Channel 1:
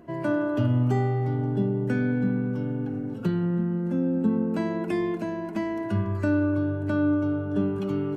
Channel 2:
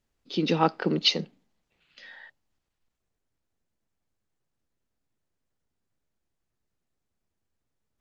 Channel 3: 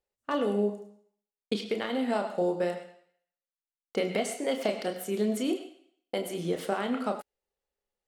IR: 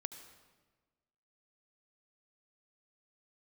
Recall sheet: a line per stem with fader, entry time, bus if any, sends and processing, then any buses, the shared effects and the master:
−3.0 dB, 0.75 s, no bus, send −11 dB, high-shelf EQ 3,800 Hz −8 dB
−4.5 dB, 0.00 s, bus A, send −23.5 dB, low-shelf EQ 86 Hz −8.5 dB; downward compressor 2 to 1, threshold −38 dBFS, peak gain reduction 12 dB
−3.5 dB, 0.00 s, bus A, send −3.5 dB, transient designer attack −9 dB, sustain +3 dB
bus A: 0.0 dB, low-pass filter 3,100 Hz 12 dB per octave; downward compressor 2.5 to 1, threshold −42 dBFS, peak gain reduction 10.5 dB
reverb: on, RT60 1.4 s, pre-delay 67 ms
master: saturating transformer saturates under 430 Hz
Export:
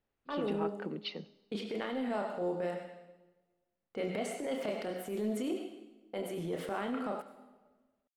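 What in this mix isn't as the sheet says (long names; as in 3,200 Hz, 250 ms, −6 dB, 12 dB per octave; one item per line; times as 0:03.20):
stem 1: muted
stem 2: missing downward compressor 2 to 1, threshold −38 dBFS, peak gain reduction 12 dB
master: missing saturating transformer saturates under 430 Hz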